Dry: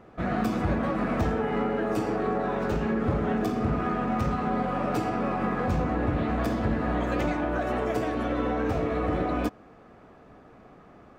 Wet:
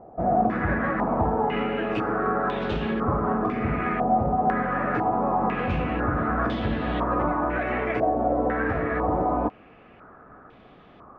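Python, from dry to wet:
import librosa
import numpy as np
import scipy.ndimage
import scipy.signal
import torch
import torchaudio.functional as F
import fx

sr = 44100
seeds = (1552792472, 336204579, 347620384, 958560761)

y = fx.filter_held_lowpass(x, sr, hz=2.0, low_hz=730.0, high_hz=3400.0)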